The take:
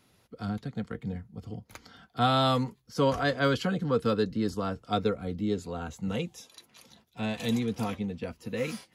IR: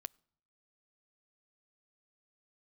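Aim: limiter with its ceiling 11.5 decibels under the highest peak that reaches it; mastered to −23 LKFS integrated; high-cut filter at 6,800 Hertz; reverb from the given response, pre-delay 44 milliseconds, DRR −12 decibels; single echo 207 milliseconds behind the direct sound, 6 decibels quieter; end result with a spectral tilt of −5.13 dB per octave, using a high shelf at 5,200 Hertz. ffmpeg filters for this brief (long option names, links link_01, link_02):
-filter_complex "[0:a]lowpass=6800,highshelf=frequency=5200:gain=6.5,alimiter=limit=-23.5dB:level=0:latency=1,aecho=1:1:207:0.501,asplit=2[link_01][link_02];[1:a]atrim=start_sample=2205,adelay=44[link_03];[link_02][link_03]afir=irnorm=-1:irlink=0,volume=16.5dB[link_04];[link_01][link_04]amix=inputs=2:normalize=0,volume=-2dB"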